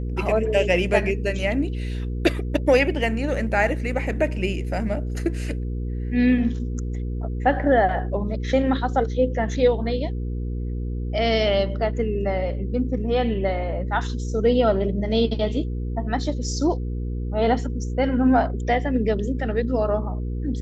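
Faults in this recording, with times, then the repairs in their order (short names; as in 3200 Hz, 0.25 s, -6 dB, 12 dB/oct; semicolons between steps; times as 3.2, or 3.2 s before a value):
hum 60 Hz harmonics 8 -27 dBFS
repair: de-hum 60 Hz, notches 8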